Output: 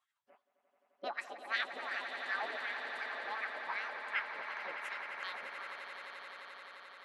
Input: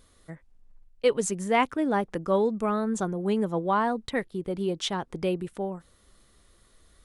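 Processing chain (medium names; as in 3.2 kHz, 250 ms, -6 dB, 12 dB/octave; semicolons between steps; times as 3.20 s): high-pass 210 Hz 24 dB/octave; spectral gate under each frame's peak -20 dB weak; wah-wah 2.7 Hz 340–1400 Hz, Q 5.5; formant shift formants +5 st; on a send: echo with a slow build-up 87 ms, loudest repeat 8, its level -12 dB; on the sum: trim +14 dB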